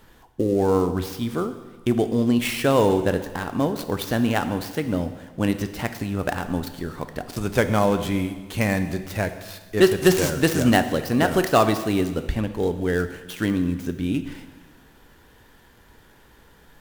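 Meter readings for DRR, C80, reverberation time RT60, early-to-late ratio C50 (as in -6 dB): 9.0 dB, 12.5 dB, 1.4 s, 11.0 dB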